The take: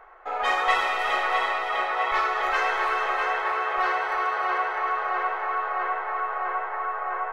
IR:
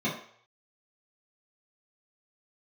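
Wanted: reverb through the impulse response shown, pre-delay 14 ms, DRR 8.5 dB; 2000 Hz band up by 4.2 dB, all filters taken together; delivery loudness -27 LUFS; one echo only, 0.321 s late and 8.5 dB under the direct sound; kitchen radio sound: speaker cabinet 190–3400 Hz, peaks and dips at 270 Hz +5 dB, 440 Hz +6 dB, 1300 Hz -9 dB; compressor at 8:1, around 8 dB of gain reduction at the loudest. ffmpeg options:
-filter_complex "[0:a]equalizer=f=2k:t=o:g=7,acompressor=threshold=-22dB:ratio=8,aecho=1:1:321:0.376,asplit=2[a][b];[1:a]atrim=start_sample=2205,adelay=14[c];[b][c]afir=irnorm=-1:irlink=0,volume=-18dB[d];[a][d]amix=inputs=2:normalize=0,highpass=190,equalizer=f=270:t=q:w=4:g=5,equalizer=f=440:t=q:w=4:g=6,equalizer=f=1.3k:t=q:w=4:g=-9,lowpass=f=3.4k:w=0.5412,lowpass=f=3.4k:w=1.3066,volume=-0.5dB"

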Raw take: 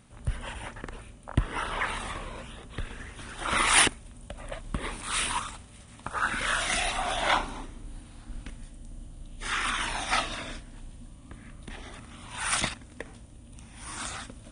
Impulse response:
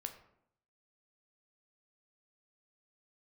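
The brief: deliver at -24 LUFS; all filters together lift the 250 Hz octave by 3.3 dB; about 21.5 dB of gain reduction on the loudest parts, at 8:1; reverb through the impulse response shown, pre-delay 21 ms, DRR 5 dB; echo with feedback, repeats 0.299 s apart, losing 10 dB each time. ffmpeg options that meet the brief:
-filter_complex "[0:a]equalizer=f=250:t=o:g=4,acompressor=threshold=-41dB:ratio=8,aecho=1:1:299|598|897|1196:0.316|0.101|0.0324|0.0104,asplit=2[a][b];[1:a]atrim=start_sample=2205,adelay=21[c];[b][c]afir=irnorm=-1:irlink=0,volume=-2.5dB[d];[a][d]amix=inputs=2:normalize=0,volume=19.5dB"

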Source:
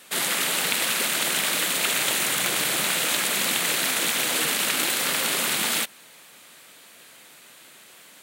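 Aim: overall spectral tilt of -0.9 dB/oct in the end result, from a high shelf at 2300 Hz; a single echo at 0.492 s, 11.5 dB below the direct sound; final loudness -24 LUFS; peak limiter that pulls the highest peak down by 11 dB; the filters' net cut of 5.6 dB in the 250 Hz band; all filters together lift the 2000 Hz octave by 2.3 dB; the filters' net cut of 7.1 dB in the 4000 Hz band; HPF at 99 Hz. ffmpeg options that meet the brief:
-af "highpass=99,equalizer=f=250:t=o:g=-7.5,equalizer=f=2k:t=o:g=7.5,highshelf=f=2.3k:g=-4.5,equalizer=f=4k:t=o:g=-8.5,alimiter=limit=-18.5dB:level=0:latency=1,aecho=1:1:492:0.266,volume=2.5dB"

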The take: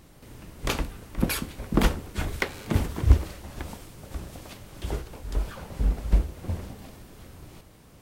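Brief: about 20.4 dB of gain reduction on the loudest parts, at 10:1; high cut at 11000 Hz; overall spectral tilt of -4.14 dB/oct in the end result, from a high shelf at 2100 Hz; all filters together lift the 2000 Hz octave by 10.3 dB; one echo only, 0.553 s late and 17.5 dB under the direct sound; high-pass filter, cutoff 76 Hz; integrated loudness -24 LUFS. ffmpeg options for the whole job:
-af "highpass=76,lowpass=11k,equalizer=f=2k:t=o:g=7.5,highshelf=f=2.1k:g=8.5,acompressor=threshold=-37dB:ratio=10,aecho=1:1:553:0.133,volume=18dB"

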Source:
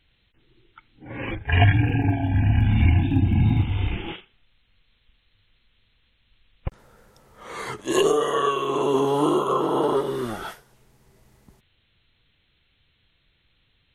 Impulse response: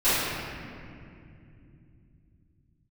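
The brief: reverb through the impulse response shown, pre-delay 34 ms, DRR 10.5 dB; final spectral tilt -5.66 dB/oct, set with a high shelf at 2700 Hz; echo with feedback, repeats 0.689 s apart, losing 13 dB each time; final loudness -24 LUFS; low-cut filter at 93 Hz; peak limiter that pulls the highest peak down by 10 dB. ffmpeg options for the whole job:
-filter_complex "[0:a]highpass=93,highshelf=f=2.7k:g=8,alimiter=limit=-14dB:level=0:latency=1,aecho=1:1:689|1378|2067:0.224|0.0493|0.0108,asplit=2[a][b];[1:a]atrim=start_sample=2205,adelay=34[c];[b][c]afir=irnorm=-1:irlink=0,volume=-28.5dB[d];[a][d]amix=inputs=2:normalize=0"

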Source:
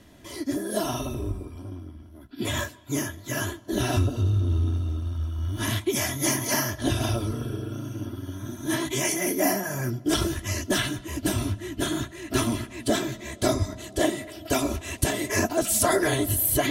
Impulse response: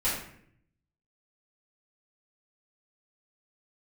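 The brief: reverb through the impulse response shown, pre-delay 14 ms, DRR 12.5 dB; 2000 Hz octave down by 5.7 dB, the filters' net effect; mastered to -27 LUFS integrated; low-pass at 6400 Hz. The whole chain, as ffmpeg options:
-filter_complex "[0:a]lowpass=6.4k,equalizer=f=2k:t=o:g=-7,asplit=2[a][b];[1:a]atrim=start_sample=2205,adelay=14[c];[b][c]afir=irnorm=-1:irlink=0,volume=-22dB[d];[a][d]amix=inputs=2:normalize=0,volume=1dB"

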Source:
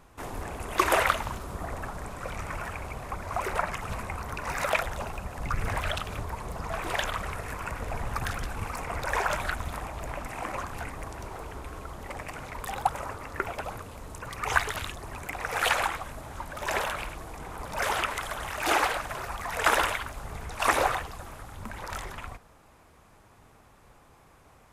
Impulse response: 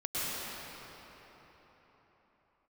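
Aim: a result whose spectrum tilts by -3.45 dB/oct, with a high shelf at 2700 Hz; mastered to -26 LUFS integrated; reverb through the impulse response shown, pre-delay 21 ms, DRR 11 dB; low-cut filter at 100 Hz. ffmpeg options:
-filter_complex "[0:a]highpass=100,highshelf=f=2.7k:g=3,asplit=2[a][b];[1:a]atrim=start_sample=2205,adelay=21[c];[b][c]afir=irnorm=-1:irlink=0,volume=-19dB[d];[a][d]amix=inputs=2:normalize=0,volume=4.5dB"

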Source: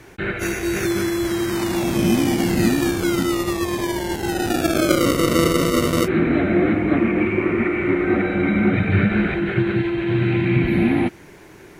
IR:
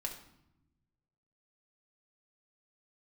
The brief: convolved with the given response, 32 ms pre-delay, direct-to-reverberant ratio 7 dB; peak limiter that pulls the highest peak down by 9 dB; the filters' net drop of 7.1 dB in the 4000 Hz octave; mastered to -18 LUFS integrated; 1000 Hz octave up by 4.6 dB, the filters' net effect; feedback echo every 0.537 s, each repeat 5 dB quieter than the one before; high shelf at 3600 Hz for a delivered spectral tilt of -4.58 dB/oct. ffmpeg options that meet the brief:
-filter_complex "[0:a]equalizer=f=1k:t=o:g=7.5,highshelf=f=3.6k:g=-8,equalizer=f=4k:t=o:g=-5,alimiter=limit=-11.5dB:level=0:latency=1,aecho=1:1:537|1074|1611|2148|2685|3222|3759:0.562|0.315|0.176|0.0988|0.0553|0.031|0.0173,asplit=2[a][b];[1:a]atrim=start_sample=2205,adelay=32[c];[b][c]afir=irnorm=-1:irlink=0,volume=-7dB[d];[a][d]amix=inputs=2:normalize=0,volume=0.5dB"

